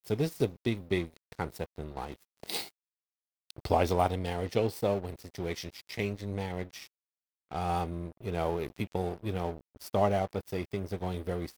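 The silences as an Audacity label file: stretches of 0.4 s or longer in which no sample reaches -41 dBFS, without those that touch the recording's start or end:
2.700000	3.500000	silence
6.860000	7.510000	silence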